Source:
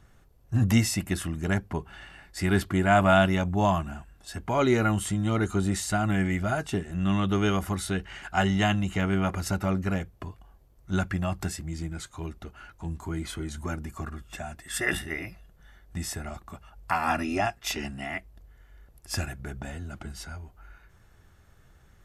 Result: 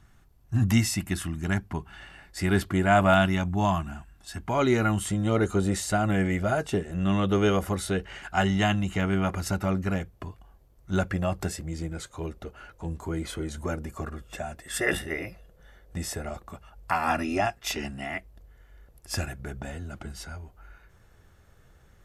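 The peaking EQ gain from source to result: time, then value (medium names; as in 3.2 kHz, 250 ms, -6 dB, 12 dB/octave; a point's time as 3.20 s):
peaking EQ 500 Hz 0.54 oct
-9 dB
from 2.00 s +1.5 dB
from 3.14 s -8 dB
from 4.49 s -1 dB
from 5.11 s +10 dB
from 8.19 s +1.5 dB
from 10.96 s +12 dB
from 16.50 s +4.5 dB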